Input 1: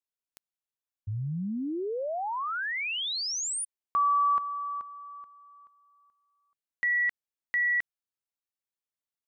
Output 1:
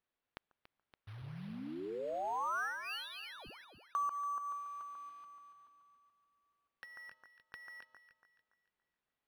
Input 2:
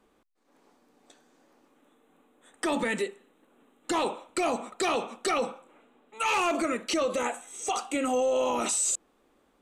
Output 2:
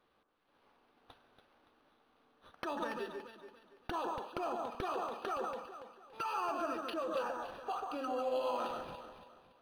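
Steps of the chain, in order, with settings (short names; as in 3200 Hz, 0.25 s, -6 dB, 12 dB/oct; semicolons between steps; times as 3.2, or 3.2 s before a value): block floating point 5-bit; pre-emphasis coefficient 0.97; treble ducked by the level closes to 1800 Hz, closed at -36.5 dBFS; high shelf 2800 Hz -11 dB; compressor 3:1, threshold -47 dBFS; Butterworth band-stop 2100 Hz, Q 2.3; echo with dull and thin repeats by turns 0.142 s, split 1700 Hz, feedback 59%, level -3 dB; decimation joined by straight lines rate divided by 6×; gain +13 dB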